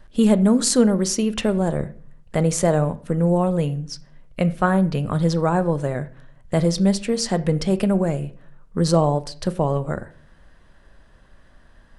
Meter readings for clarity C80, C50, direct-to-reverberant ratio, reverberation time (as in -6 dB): 21.5 dB, 17.5 dB, 11.5 dB, 0.45 s